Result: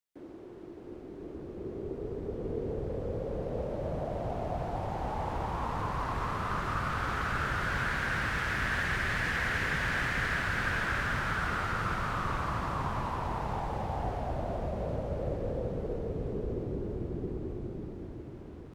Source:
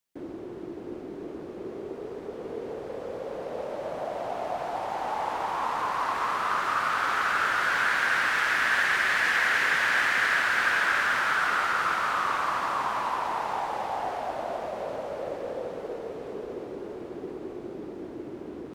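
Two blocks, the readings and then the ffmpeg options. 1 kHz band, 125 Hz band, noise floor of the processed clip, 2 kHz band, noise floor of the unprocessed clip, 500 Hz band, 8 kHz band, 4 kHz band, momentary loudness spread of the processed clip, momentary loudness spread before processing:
−7.5 dB, +14.5 dB, −46 dBFS, −8.0 dB, −40 dBFS, −2.5 dB, −8.0 dB, −8.0 dB, 12 LU, 16 LU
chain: -filter_complex "[0:a]acrossover=split=430[link_01][link_02];[link_01]dynaudnorm=framelen=380:gausssize=9:maxgain=15dB[link_03];[link_03][link_02]amix=inputs=2:normalize=0,asubboost=boost=7:cutoff=110,volume=-8dB"

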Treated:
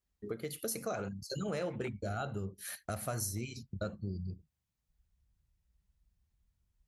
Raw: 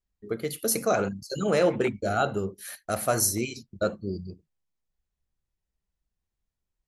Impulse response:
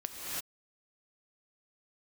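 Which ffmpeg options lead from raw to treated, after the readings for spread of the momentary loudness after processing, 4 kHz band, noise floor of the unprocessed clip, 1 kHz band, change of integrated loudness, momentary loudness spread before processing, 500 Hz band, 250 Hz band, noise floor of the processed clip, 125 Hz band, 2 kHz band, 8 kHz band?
7 LU, −10.0 dB, −85 dBFS, −13.0 dB, −12.0 dB, 12 LU, −13.5 dB, −10.5 dB, below −85 dBFS, −4.5 dB, −12.0 dB, −12.0 dB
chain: -af "highpass=42,asubboost=boost=4.5:cutoff=170,acompressor=threshold=-40dB:ratio=3,volume=1dB"

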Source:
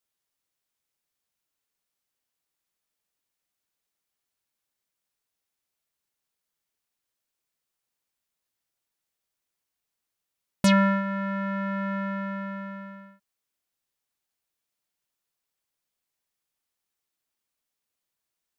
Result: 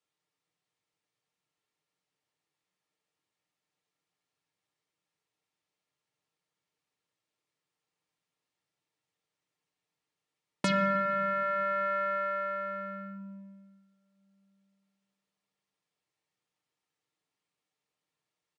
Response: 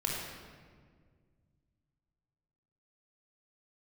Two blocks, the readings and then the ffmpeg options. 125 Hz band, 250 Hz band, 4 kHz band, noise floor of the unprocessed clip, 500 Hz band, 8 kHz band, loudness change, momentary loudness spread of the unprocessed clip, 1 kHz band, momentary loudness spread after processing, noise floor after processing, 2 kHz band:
−10.5 dB, −11.5 dB, −6.5 dB, −85 dBFS, +0.5 dB, −9.0 dB, −3.5 dB, 17 LU, +1.0 dB, 16 LU, below −85 dBFS, −2.5 dB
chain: -filter_complex "[0:a]highpass=110,highshelf=frequency=7200:gain=-12,bandreject=frequency=1500:width=15,aecho=1:1:6.6:0.41,acrossover=split=150|1000[link_01][link_02][link_03];[link_01]acompressor=threshold=-43dB:ratio=4[link_04];[link_02]acompressor=threshold=-34dB:ratio=4[link_05];[link_03]acompressor=threshold=-31dB:ratio=4[link_06];[link_04][link_05][link_06]amix=inputs=3:normalize=0,asplit=2[link_07][link_08];[1:a]atrim=start_sample=2205,lowpass=4700,lowshelf=frequency=490:gain=6.5[link_09];[link_08][link_09]afir=irnorm=-1:irlink=0,volume=-13dB[link_10];[link_07][link_10]amix=inputs=2:normalize=0,aresample=22050,aresample=44100"

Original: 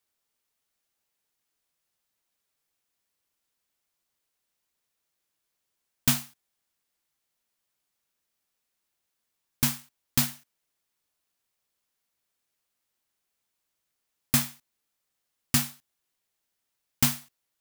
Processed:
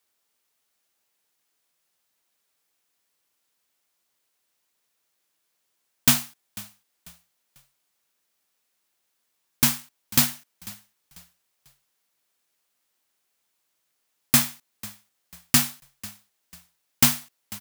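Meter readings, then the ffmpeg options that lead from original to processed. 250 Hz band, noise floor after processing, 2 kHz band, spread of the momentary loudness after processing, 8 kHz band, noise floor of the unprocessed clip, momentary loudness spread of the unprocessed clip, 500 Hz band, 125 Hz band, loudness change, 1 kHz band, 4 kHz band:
+3.5 dB, −75 dBFS, +6.0 dB, 20 LU, +6.0 dB, −82 dBFS, 11 LU, +5.5 dB, +1.0 dB, +5.5 dB, +6.0 dB, +6.0 dB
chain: -filter_complex "[0:a]lowshelf=frequency=120:gain=-11.5,asplit=4[link_01][link_02][link_03][link_04];[link_02]adelay=494,afreqshift=-34,volume=-20dB[link_05];[link_03]adelay=988,afreqshift=-68,volume=-29.6dB[link_06];[link_04]adelay=1482,afreqshift=-102,volume=-39.3dB[link_07];[link_01][link_05][link_06][link_07]amix=inputs=4:normalize=0,volume=6dB"

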